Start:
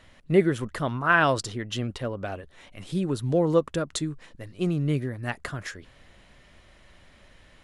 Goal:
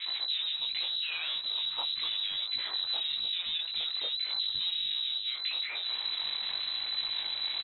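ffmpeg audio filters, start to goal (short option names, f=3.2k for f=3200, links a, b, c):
-filter_complex "[0:a]aeval=exprs='val(0)+0.5*0.0376*sgn(val(0))':c=same,lowshelf=f=170:g=2.5,acrossover=split=540[a][b];[a]acontrast=29[c];[c][b]amix=inputs=2:normalize=0,alimiter=limit=-13dB:level=0:latency=1:release=391,asoftclip=type=hard:threshold=-29dB,lowpass=f=3.4k:t=q:w=0.5098,lowpass=f=3.4k:t=q:w=0.6013,lowpass=f=3.4k:t=q:w=0.9,lowpass=f=3.4k:t=q:w=2.563,afreqshift=-4000,flanger=delay=17.5:depth=5.3:speed=0.86,acrossover=split=270|1600[d][e][f];[e]adelay=60[g];[d]adelay=590[h];[h][g][f]amix=inputs=3:normalize=0"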